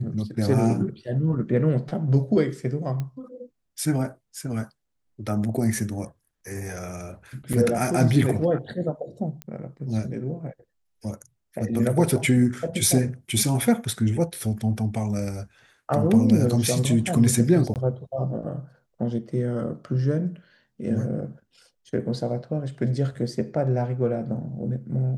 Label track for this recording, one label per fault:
3.000000	3.000000	pop -19 dBFS
7.530000	7.540000	gap 6.2 ms
9.420000	9.420000	pop -19 dBFS
17.740000	17.760000	gap 18 ms

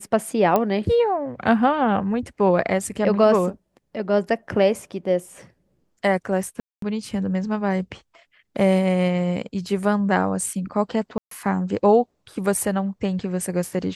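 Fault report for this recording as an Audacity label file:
0.560000	0.560000	pop -7 dBFS
6.600000	6.820000	gap 0.223 s
11.180000	11.310000	gap 0.133 s

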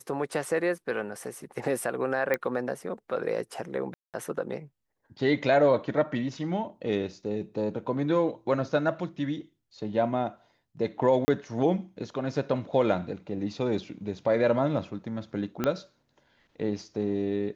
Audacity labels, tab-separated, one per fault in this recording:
2.340000	2.340000	pop -14 dBFS
3.940000	4.140000	gap 0.198 s
11.250000	11.280000	gap 30 ms
15.640000	15.640000	pop -13 dBFS

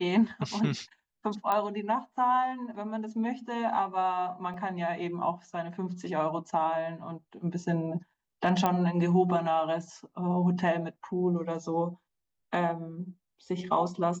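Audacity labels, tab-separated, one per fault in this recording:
1.520000	1.520000	pop -16 dBFS
4.540000	4.540000	gap 2.8 ms
8.660000	8.660000	pop -13 dBFS

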